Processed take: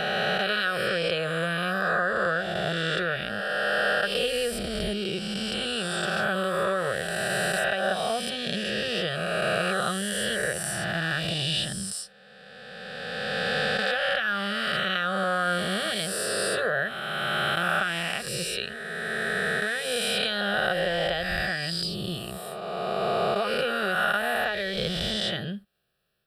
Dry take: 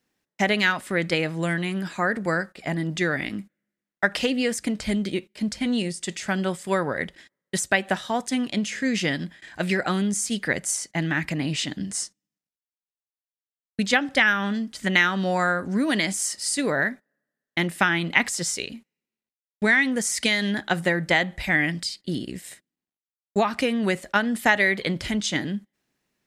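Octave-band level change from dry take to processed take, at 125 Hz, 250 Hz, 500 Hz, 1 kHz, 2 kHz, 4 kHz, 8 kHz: −4.0, −8.5, +1.0, 0.0, −2.0, +2.5, −5.5 decibels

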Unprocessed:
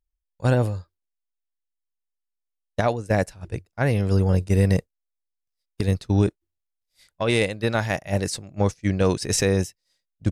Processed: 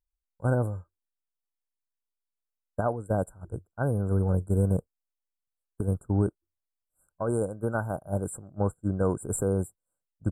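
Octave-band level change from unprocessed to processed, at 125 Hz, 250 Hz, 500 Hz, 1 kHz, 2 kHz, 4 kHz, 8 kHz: −5.5 dB, −5.5 dB, −5.5 dB, −5.5 dB, −12.5 dB, below −40 dB, −8.5 dB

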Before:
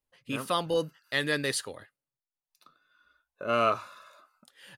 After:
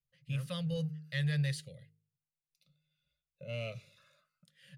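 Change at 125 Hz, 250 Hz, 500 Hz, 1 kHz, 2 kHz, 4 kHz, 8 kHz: +8.0 dB, −3.5 dB, −14.0 dB, below −25 dB, −11.0 dB, −10.0 dB, −14.0 dB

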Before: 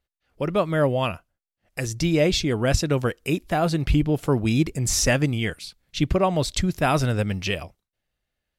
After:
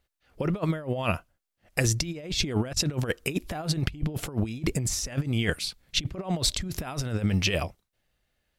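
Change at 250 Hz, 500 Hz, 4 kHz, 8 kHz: −6.5, −9.5, −0.5, −2.5 decibels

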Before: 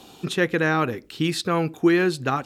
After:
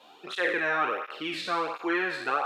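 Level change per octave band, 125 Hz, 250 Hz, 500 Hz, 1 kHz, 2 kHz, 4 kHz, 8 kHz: −24.5, −13.0, −8.0, −2.0, −2.0, −5.0, −13.5 decibels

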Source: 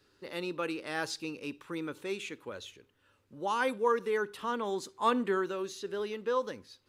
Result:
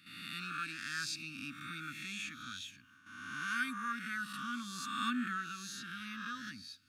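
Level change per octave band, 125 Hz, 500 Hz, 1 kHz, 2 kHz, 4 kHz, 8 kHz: −2.5 dB, below −35 dB, −7.5 dB, +0.5 dB, +0.5 dB, +1.0 dB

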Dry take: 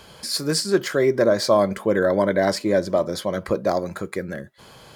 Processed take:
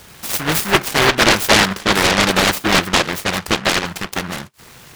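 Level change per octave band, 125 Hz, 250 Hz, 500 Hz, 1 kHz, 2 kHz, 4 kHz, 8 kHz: +6.0, +3.5, −2.0, +9.5, +14.0, +13.0, +11.0 decibels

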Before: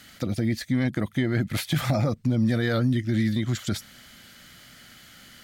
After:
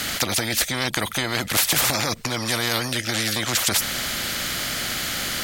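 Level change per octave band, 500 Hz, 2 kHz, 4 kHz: +1.5, +10.5, +15.0 decibels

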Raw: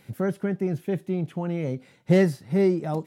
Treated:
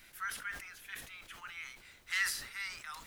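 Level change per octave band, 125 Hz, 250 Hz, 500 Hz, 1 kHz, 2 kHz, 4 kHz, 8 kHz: −37.5 dB, below −40 dB, below −40 dB, −8.5 dB, +2.0 dB, +3.5 dB, can't be measured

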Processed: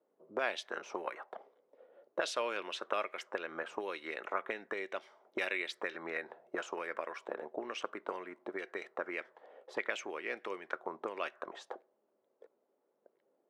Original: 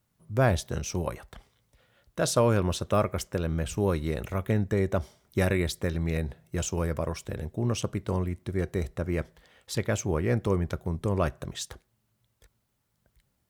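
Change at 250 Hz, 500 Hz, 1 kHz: −17.5, −10.5, −5.5 decibels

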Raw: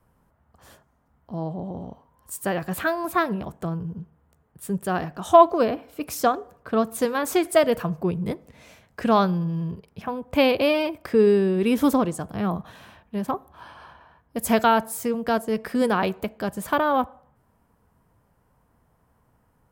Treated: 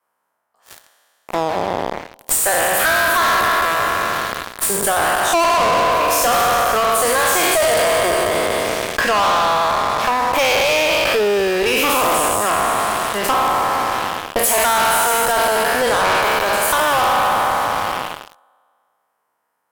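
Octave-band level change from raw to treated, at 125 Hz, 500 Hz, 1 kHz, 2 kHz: −3.0, +5.0, +10.5, +14.5 decibels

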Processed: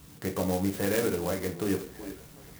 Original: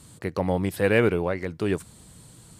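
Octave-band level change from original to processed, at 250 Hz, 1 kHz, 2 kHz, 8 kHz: −3.0, −5.0, −8.5, +5.5 decibels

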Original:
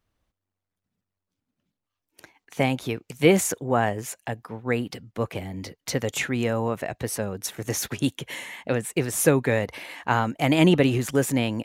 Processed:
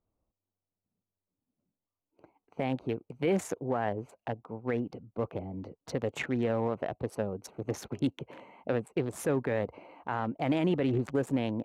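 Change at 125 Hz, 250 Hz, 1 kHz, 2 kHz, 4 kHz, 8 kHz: −8.5, −7.0, −8.0, −12.0, −14.5, −18.0 decibels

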